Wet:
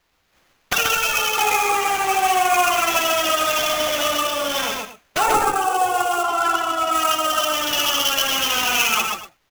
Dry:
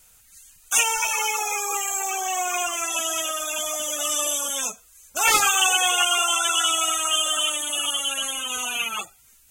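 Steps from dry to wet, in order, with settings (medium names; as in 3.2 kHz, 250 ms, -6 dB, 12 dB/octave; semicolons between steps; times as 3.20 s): 0.73–1.38 s: static phaser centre 1.4 kHz, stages 8; low-pass that closes with the level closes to 760 Hz, closed at -16.5 dBFS; gate -42 dBFS, range -21 dB; multi-tap echo 57/134/241 ms -8/-3/-14.5 dB; sample-rate reducer 8.9 kHz, jitter 20%; 6.23–6.93 s: treble shelf 6 kHz -10 dB; trim +8 dB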